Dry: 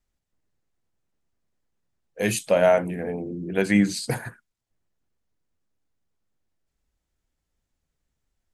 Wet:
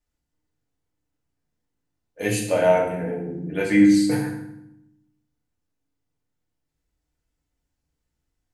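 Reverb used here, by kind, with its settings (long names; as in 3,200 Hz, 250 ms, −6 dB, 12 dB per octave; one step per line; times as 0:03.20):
feedback delay network reverb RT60 0.81 s, low-frequency decay 1.55×, high-frequency decay 0.8×, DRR −3 dB
level −5 dB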